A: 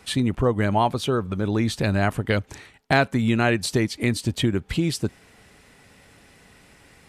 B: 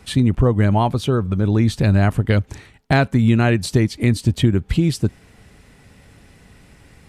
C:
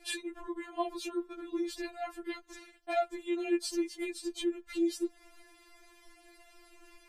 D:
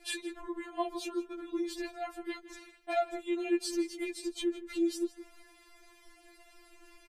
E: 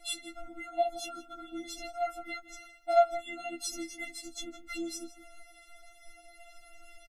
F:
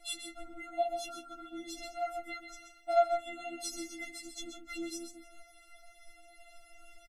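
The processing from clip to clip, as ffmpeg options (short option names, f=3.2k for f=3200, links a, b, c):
-af "lowshelf=f=220:g=11.5"
-af "acompressor=threshold=-21dB:ratio=6,afftfilt=real='re*4*eq(mod(b,16),0)':imag='im*4*eq(mod(b,16),0)':win_size=2048:overlap=0.75,volume=-4dB"
-filter_complex "[0:a]asplit=2[a][b];[b]adelay=163.3,volume=-15dB,highshelf=f=4k:g=-3.67[c];[a][c]amix=inputs=2:normalize=0"
-filter_complex "[0:a]asplit=2[a][b];[b]adelay=19,volume=-13.5dB[c];[a][c]amix=inputs=2:normalize=0,afftfilt=real='re*eq(mod(floor(b*sr/1024/320),2),0)':imag='im*eq(mod(floor(b*sr/1024/320),2),0)':win_size=1024:overlap=0.75,volume=6.5dB"
-af "aecho=1:1:133:0.398,volume=-3dB"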